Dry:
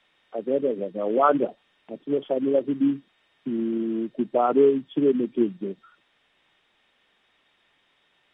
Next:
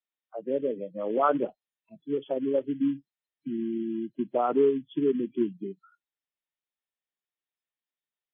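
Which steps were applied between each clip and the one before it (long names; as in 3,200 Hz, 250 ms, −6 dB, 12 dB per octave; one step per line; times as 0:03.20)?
noise reduction from a noise print of the clip's start 29 dB
level −4.5 dB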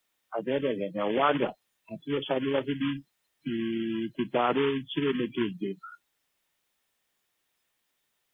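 every bin compressed towards the loudest bin 2 to 1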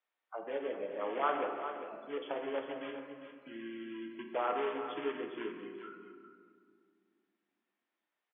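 band-pass filter 500–2,200 Hz
single-tap delay 402 ms −10 dB
on a send at −3.5 dB: convolution reverb RT60 2.0 s, pre-delay 6 ms
on the sum: level −7 dB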